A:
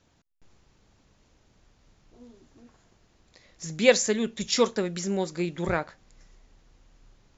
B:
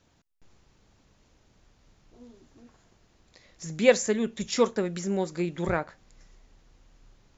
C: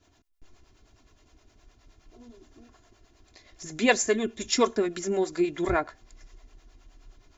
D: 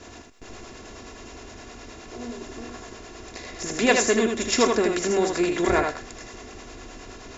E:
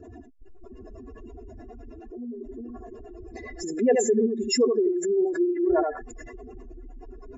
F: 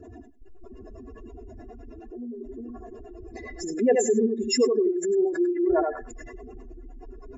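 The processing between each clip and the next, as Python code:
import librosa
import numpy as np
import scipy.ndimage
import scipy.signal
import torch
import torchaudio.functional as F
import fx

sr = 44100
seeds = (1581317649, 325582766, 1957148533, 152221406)

y1 = fx.dynamic_eq(x, sr, hz=4400.0, q=0.82, threshold_db=-45.0, ratio=4.0, max_db=-7)
y2 = fx.harmonic_tremolo(y1, sr, hz=9.6, depth_pct=70, crossover_hz=430.0)
y2 = y2 + 0.7 * np.pad(y2, (int(2.9 * sr / 1000.0), 0))[:len(y2)]
y2 = y2 * librosa.db_to_amplitude(4.0)
y3 = fx.bin_compress(y2, sr, power=0.6)
y3 = y3 + 10.0 ** (-4.5 / 20.0) * np.pad(y3, (int(79 * sr / 1000.0), 0))[:len(y3)]
y4 = fx.spec_expand(y3, sr, power=3.5)
y5 = y4 + 10.0 ** (-16.5 / 20.0) * np.pad(y4, (int(97 * sr / 1000.0), 0))[:len(y4)]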